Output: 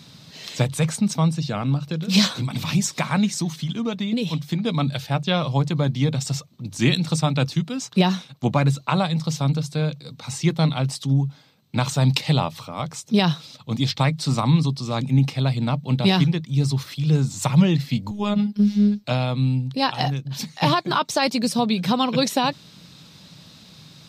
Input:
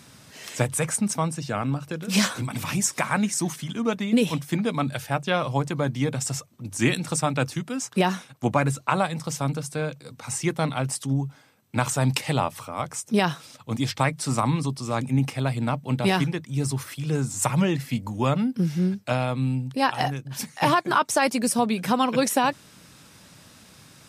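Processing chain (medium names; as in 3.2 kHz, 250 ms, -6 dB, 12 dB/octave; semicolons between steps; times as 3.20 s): fifteen-band graphic EQ 160 Hz +9 dB, 1.6 kHz -4 dB, 4 kHz +11 dB, 10 kHz -10 dB; 3.35–4.65 s: compression 3:1, threshold -22 dBFS, peak gain reduction 7 dB; 18.11–19.04 s: robot voice 206 Hz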